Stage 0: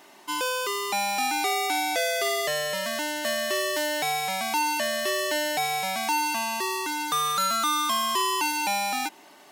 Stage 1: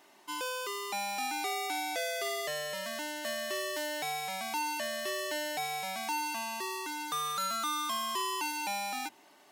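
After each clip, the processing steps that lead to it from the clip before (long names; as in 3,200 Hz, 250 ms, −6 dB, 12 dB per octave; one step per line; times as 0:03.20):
mains-hum notches 60/120/180/240 Hz
level −8.5 dB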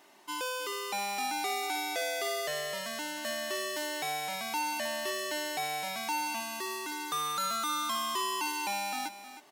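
single-tap delay 314 ms −12.5 dB
level +1 dB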